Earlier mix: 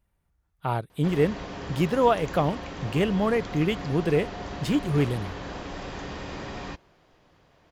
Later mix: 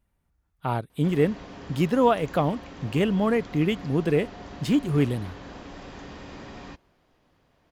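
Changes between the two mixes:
background -6.0 dB; master: add bell 250 Hz +6 dB 0.35 oct

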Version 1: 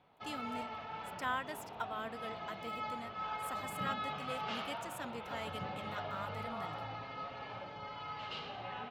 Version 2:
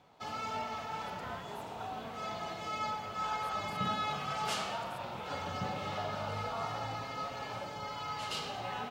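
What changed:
speech -10.5 dB; background: remove ladder low-pass 4300 Hz, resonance 20%

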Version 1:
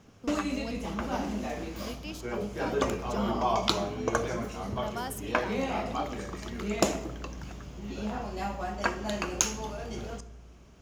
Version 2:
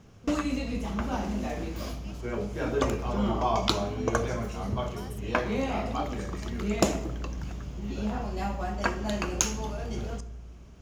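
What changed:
speech -11.0 dB; master: add low shelf 190 Hz +7.5 dB

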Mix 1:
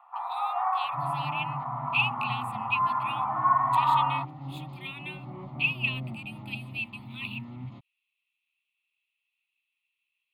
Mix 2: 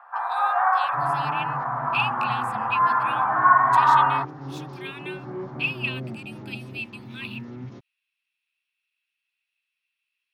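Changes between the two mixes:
first sound +5.5 dB; master: remove fixed phaser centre 1600 Hz, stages 6

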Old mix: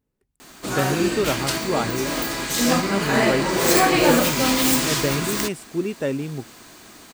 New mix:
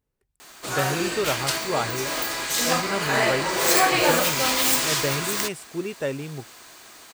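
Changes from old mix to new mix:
background: add low shelf 170 Hz -11 dB; master: add bell 240 Hz -8.5 dB 1.3 oct

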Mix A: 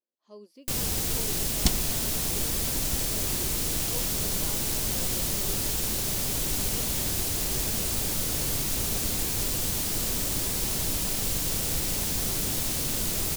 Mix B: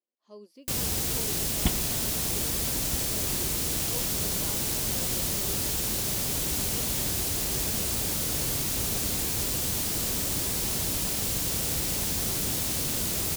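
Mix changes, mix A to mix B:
second sound: add brick-wall FIR low-pass 3600 Hz; master: add HPF 42 Hz

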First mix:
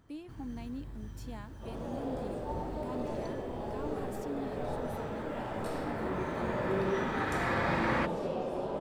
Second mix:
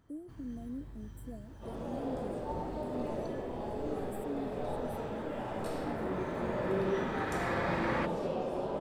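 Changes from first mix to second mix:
speech: add brick-wall FIR band-stop 710–7400 Hz; first sound -3.5 dB

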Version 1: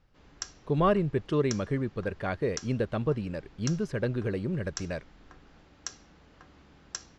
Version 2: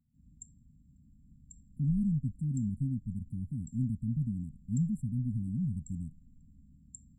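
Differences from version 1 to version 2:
speech: entry +1.10 s; master: add brick-wall FIR band-stop 270–7300 Hz

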